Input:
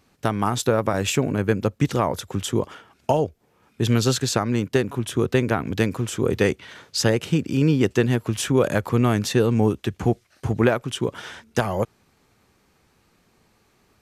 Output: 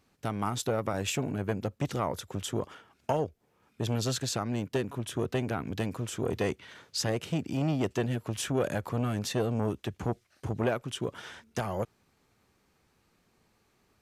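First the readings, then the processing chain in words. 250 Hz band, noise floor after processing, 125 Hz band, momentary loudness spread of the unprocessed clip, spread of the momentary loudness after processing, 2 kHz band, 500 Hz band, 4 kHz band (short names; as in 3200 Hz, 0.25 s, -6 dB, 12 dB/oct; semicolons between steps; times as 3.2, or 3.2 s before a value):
-10.5 dB, -71 dBFS, -9.5 dB, 8 LU, 7 LU, -10.5 dB, -10.0 dB, -8.0 dB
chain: core saturation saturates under 500 Hz; gain -7.5 dB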